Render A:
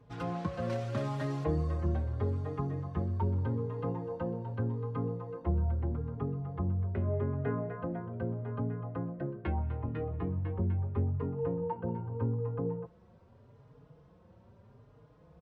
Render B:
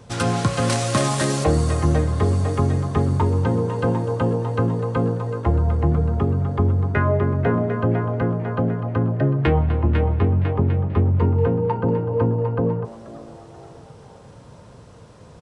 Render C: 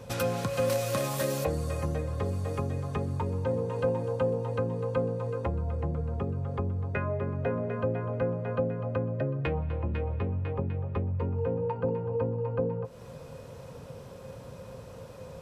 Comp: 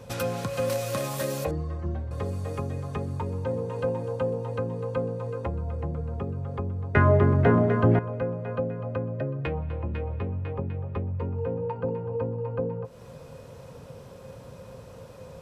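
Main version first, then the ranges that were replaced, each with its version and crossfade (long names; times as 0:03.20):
C
0:01.51–0:02.11: punch in from A
0:06.95–0:07.99: punch in from B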